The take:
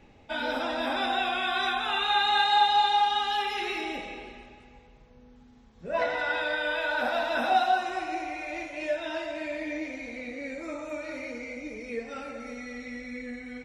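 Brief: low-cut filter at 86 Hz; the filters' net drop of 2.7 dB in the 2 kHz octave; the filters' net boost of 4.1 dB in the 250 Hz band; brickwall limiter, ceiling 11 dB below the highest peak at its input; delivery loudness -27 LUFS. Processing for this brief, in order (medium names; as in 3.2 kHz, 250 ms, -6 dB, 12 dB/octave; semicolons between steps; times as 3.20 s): high-pass 86 Hz; peaking EQ 250 Hz +5 dB; peaking EQ 2 kHz -4 dB; trim +5.5 dB; peak limiter -17.5 dBFS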